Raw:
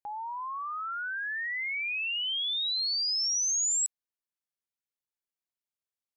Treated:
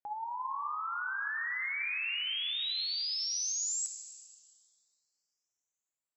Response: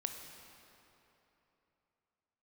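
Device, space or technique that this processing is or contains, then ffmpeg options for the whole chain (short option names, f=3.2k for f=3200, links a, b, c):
swimming-pool hall: -filter_complex "[1:a]atrim=start_sample=2205[a];[0:a][a]afir=irnorm=-1:irlink=0,lowshelf=f=150:g=-4.5,highshelf=f=3.4k:g=-7"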